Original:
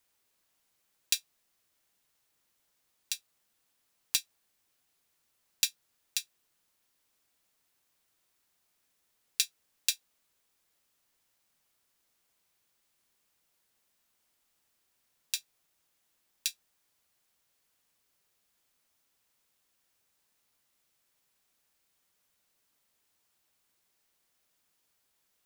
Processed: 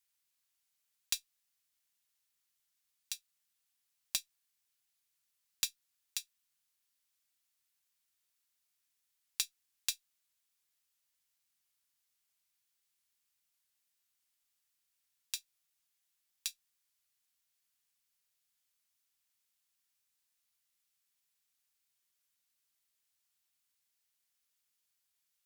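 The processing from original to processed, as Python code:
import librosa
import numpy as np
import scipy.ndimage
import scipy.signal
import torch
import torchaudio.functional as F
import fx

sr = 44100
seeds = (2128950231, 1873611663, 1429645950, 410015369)

y = fx.tube_stage(x, sr, drive_db=7.0, bias=0.75)
y = fx.tone_stack(y, sr, knobs='5-5-5')
y = y * 10.0 ** (5.0 / 20.0)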